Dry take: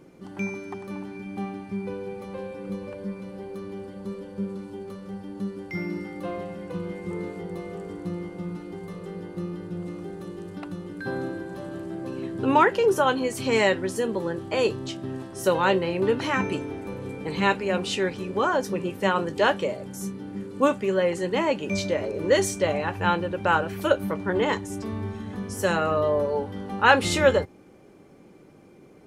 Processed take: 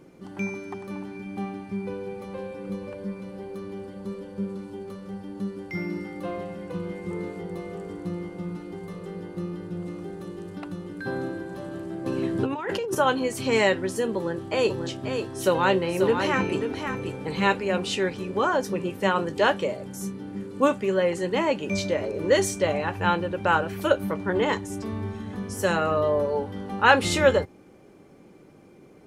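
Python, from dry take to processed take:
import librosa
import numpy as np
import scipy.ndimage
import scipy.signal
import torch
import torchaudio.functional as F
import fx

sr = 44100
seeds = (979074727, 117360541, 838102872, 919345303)

y = fx.over_compress(x, sr, threshold_db=-27.0, ratio=-1.0, at=(12.06, 12.95))
y = fx.echo_single(y, sr, ms=538, db=-6.5, at=(14.69, 17.58), fade=0.02)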